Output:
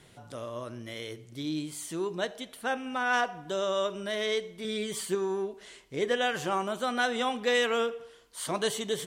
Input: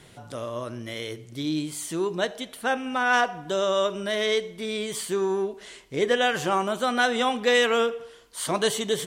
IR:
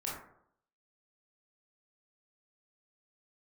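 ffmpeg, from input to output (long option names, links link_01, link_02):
-filter_complex "[0:a]asettb=1/sr,asplit=3[link_01][link_02][link_03];[link_01]atrim=end=4.644[link_04];[link_02]atrim=start=4.64:end=5.15,asetpts=PTS-STARTPTS,afade=type=in:duration=0.004:curve=qsin,afade=type=out:start_time=0.506:duration=0.004:curve=qsin,aecho=1:1:5.2:0.69,atrim=end_sample=22491[link_05];[link_03]atrim=start=5.146[link_06];[link_04][link_05]acrossfade=duration=0.004:curve1=hsin:curve2=qsin[link_07];[link_07][link_06]acrossfade=duration=0.004:curve1=qsin:curve2=hsin,volume=-5.5dB"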